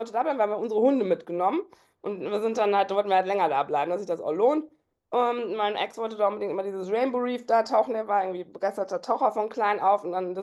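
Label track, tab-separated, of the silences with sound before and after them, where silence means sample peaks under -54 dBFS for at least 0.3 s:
4.740000	5.120000	silence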